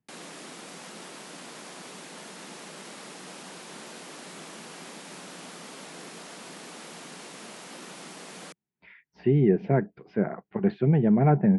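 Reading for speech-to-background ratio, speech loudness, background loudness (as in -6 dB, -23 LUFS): 17.5 dB, -24.5 LUFS, -42.0 LUFS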